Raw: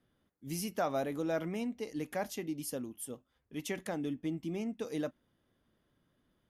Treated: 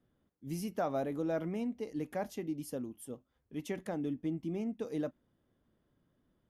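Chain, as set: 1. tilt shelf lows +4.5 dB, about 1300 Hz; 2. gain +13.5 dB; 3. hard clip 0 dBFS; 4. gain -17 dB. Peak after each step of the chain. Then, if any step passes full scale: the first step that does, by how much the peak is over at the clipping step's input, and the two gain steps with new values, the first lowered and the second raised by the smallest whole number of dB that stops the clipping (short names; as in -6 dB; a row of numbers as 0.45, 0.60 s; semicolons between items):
-19.0, -5.5, -5.5, -22.5 dBFS; no overload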